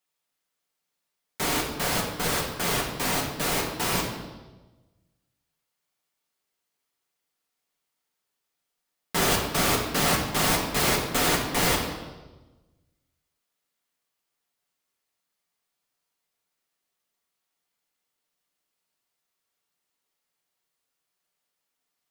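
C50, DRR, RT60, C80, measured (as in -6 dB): 4.5 dB, -2.0 dB, 1.2 s, 6.5 dB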